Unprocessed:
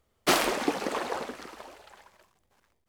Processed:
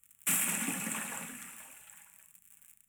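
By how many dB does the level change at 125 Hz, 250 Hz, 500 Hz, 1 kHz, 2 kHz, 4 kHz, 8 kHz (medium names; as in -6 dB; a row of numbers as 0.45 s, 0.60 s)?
-1.5 dB, -8.5 dB, -21.0 dB, -14.5 dB, -6.0 dB, -11.5 dB, +4.5 dB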